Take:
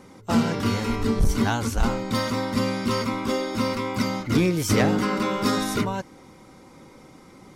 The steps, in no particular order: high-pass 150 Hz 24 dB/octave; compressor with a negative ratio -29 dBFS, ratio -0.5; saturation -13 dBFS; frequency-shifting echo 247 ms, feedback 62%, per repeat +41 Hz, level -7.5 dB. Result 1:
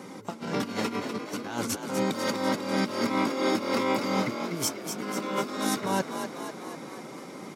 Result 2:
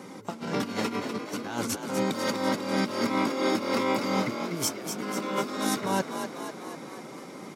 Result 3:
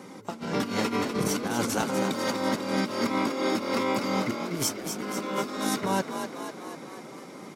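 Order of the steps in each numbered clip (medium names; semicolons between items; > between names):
compressor with a negative ratio > saturation > high-pass > frequency-shifting echo; saturation > compressor with a negative ratio > high-pass > frequency-shifting echo; high-pass > saturation > compressor with a negative ratio > frequency-shifting echo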